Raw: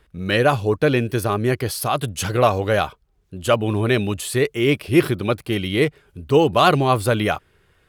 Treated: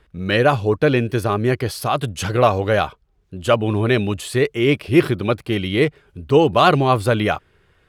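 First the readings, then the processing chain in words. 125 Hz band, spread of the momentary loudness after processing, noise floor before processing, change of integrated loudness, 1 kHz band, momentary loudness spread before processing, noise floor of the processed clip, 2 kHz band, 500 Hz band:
+1.5 dB, 7 LU, -62 dBFS, +1.5 dB, +1.5 dB, 7 LU, -61 dBFS, +1.0 dB, +1.5 dB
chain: treble shelf 8.4 kHz -11 dB; trim +1.5 dB

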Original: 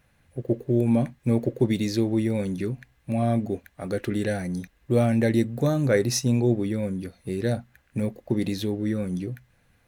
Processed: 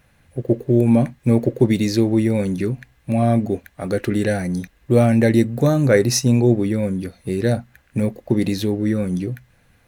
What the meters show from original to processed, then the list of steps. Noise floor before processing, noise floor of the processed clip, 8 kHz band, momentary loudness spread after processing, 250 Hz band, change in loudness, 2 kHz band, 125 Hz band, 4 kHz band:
-64 dBFS, -58 dBFS, +6.5 dB, 11 LU, +6.5 dB, +6.5 dB, +6.5 dB, +6.5 dB, +5.5 dB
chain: dynamic bell 3.4 kHz, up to -5 dB, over -59 dBFS, Q 7.4; trim +6.5 dB

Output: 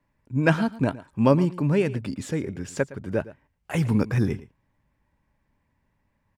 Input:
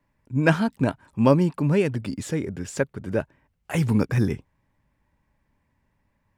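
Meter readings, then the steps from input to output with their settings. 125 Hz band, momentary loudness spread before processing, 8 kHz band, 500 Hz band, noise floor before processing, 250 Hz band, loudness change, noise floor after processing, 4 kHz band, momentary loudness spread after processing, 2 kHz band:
-1.0 dB, 10 LU, -3.0 dB, -1.0 dB, -72 dBFS, -1.0 dB, -1.0 dB, -73 dBFS, -1.5 dB, 10 LU, -1.0 dB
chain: treble shelf 7.5 kHz -4 dB; delay 113 ms -17.5 dB; trim -1 dB

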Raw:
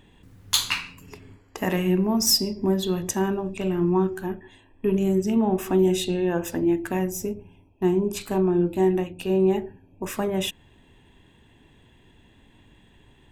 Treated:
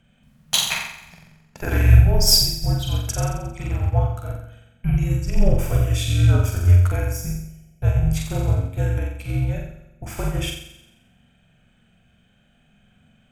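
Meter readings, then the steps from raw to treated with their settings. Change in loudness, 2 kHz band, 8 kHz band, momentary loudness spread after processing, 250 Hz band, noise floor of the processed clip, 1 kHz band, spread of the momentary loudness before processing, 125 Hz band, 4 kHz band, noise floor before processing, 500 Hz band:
+3.5 dB, +3.0 dB, +3.0 dB, 17 LU, -7.0 dB, -60 dBFS, -2.0 dB, 11 LU, +12.5 dB, +4.5 dB, -57 dBFS, -7.5 dB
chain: frequency shift -250 Hz; flutter echo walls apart 7.6 m, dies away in 0.96 s; upward expansion 1.5:1, over -33 dBFS; trim +5 dB

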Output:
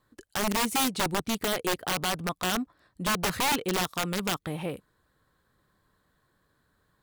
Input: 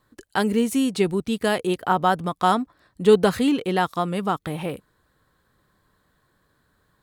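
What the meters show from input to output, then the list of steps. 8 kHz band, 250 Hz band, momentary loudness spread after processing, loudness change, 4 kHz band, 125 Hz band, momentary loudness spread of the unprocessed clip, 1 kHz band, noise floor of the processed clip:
+6.0 dB, -9.5 dB, 9 LU, -6.0 dB, +2.0 dB, -6.5 dB, 11 LU, -7.0 dB, -72 dBFS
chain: peak limiter -12.5 dBFS, peak gain reduction 7.5 dB; integer overflow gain 16.5 dB; trim -4.5 dB

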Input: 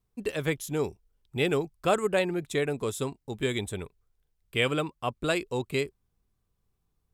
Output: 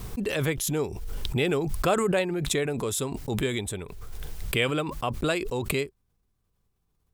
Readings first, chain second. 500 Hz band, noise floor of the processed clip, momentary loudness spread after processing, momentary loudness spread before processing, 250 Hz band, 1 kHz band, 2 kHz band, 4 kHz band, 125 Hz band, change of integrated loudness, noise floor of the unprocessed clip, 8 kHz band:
+1.0 dB, -74 dBFS, 12 LU, 8 LU, +3.0 dB, +1.5 dB, +1.0 dB, +2.5 dB, +4.0 dB, +2.0 dB, -78 dBFS, +7.5 dB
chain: swell ahead of each attack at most 25 dB/s

